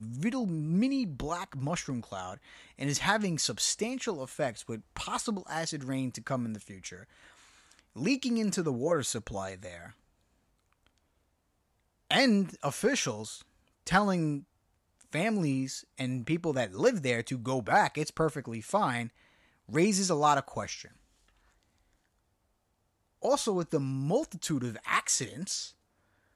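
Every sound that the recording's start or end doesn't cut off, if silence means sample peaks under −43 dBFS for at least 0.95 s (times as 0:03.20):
0:12.11–0:20.85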